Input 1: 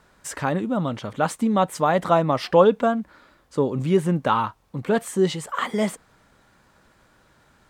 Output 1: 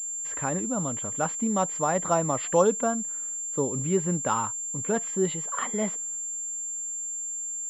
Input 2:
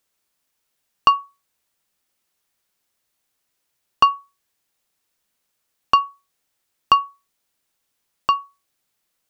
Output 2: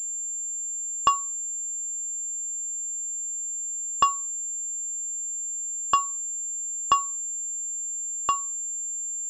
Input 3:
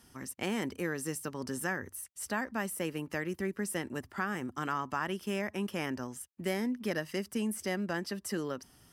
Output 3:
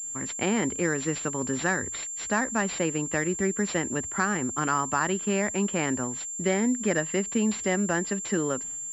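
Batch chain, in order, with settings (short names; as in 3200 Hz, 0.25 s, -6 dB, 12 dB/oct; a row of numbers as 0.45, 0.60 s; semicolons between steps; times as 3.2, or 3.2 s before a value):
expander -53 dBFS; pulse-width modulation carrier 7300 Hz; match loudness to -27 LUFS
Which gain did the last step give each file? -6.0, -6.0, +8.0 dB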